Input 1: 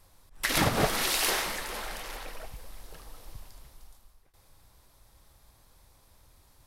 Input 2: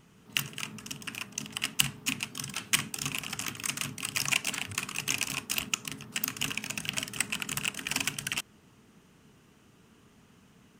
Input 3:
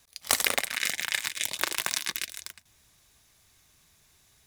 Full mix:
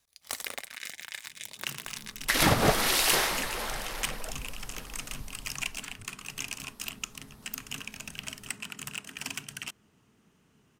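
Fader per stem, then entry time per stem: +2.5 dB, -6.5 dB, -11.5 dB; 1.85 s, 1.30 s, 0.00 s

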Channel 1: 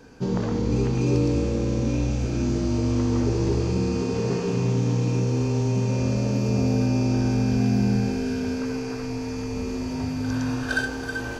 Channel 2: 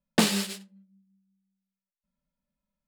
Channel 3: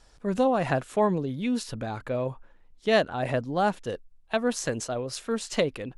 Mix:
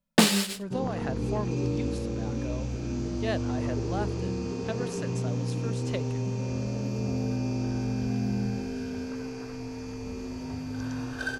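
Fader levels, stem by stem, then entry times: -7.5 dB, +2.5 dB, -10.0 dB; 0.50 s, 0.00 s, 0.35 s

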